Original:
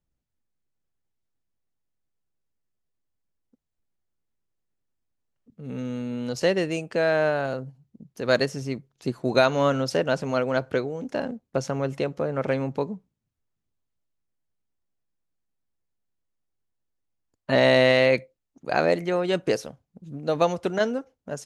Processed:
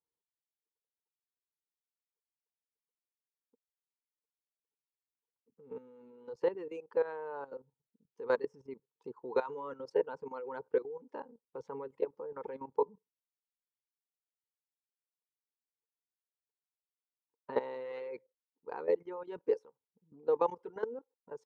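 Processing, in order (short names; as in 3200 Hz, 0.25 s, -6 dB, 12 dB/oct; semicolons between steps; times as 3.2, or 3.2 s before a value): double band-pass 650 Hz, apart 1 oct; reverb removal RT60 1.5 s; level quantiser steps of 15 dB; gain +4 dB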